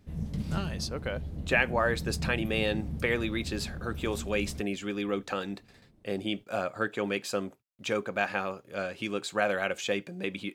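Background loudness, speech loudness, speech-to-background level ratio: -38.0 LUFS, -32.0 LUFS, 6.0 dB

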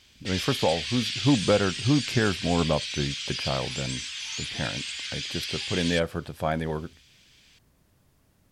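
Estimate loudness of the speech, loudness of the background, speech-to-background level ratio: -28.0 LUFS, -31.0 LUFS, 3.0 dB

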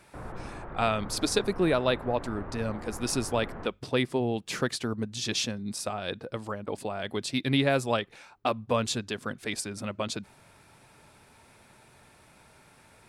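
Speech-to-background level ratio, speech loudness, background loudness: 12.0 dB, -30.0 LUFS, -42.0 LUFS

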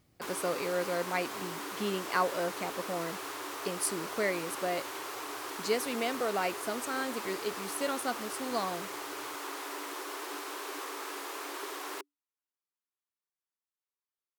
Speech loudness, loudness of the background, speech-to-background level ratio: -34.5 LUFS, -39.0 LUFS, 4.5 dB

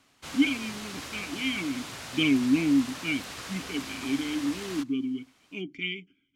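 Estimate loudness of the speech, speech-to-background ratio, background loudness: -29.5 LUFS, 9.0 dB, -38.5 LUFS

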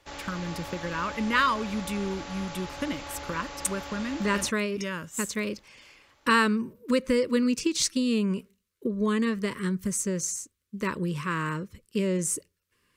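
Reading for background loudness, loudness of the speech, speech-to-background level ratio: -39.5 LUFS, -28.5 LUFS, 11.0 dB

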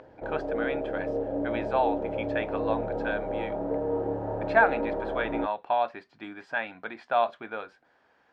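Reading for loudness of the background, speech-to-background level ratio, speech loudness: -31.5 LUFS, 1.0 dB, -30.5 LUFS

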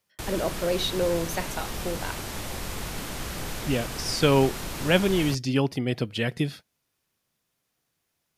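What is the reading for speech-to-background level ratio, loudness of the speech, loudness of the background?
7.5 dB, -26.5 LUFS, -34.0 LUFS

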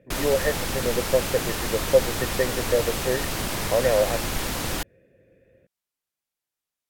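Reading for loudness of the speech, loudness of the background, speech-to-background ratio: -25.5 LUFS, -27.5 LUFS, 2.0 dB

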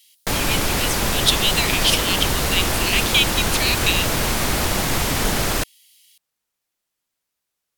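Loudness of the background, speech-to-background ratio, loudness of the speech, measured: -20.5 LUFS, -0.5 dB, -21.0 LUFS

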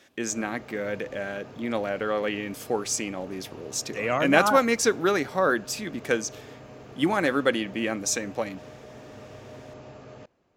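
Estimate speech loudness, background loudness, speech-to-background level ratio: -26.5 LUFS, -45.5 LUFS, 19.0 dB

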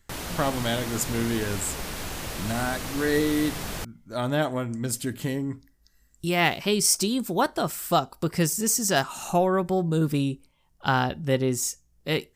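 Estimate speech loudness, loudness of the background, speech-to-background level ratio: -26.0 LUFS, -33.5 LUFS, 7.5 dB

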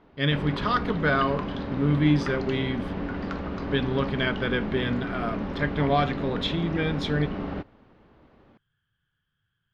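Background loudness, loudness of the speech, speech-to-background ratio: -32.5 LUFS, -27.0 LUFS, 5.5 dB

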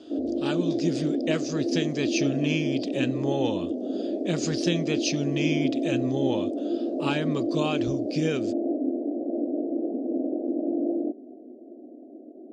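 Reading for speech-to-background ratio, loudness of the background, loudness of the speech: -1.0 dB, -28.5 LUFS, -29.5 LUFS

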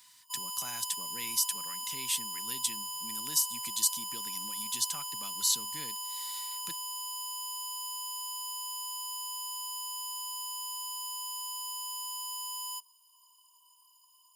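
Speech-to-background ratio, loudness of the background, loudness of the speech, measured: 3.5 dB, -36.0 LUFS, -32.5 LUFS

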